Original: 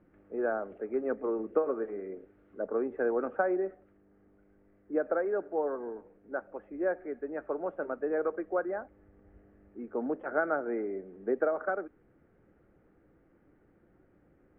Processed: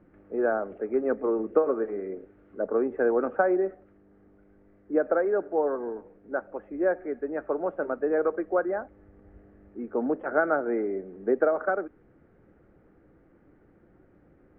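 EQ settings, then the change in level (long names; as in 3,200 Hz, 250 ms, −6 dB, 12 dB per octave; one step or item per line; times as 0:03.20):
high-frequency loss of the air 180 metres
+6.0 dB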